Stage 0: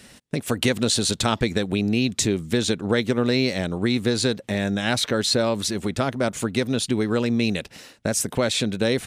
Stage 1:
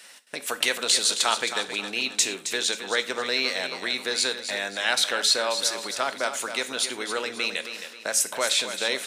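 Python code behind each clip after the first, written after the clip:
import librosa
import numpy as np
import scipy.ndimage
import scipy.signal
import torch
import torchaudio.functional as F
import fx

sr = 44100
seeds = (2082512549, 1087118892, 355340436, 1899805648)

y = scipy.signal.sosfilt(scipy.signal.butter(2, 810.0, 'highpass', fs=sr, output='sos'), x)
y = fx.echo_feedback(y, sr, ms=268, feedback_pct=37, wet_db=-9.5)
y = fx.rev_gated(y, sr, seeds[0], gate_ms=140, shape='falling', drr_db=10.5)
y = y * librosa.db_to_amplitude(1.5)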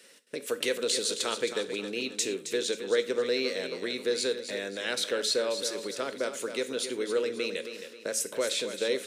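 y = fx.low_shelf_res(x, sr, hz=600.0, db=7.5, q=3.0)
y = y * librosa.db_to_amplitude(-8.0)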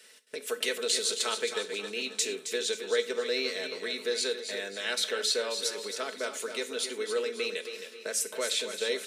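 y = fx.highpass(x, sr, hz=620.0, slope=6)
y = y + 0.53 * np.pad(y, (int(4.6 * sr / 1000.0), 0))[:len(y)]
y = fx.echo_feedback(y, sr, ms=279, feedback_pct=41, wet_db=-14)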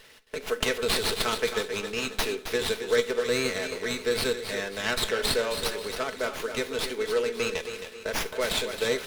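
y = fx.running_max(x, sr, window=5)
y = y * librosa.db_to_amplitude(4.5)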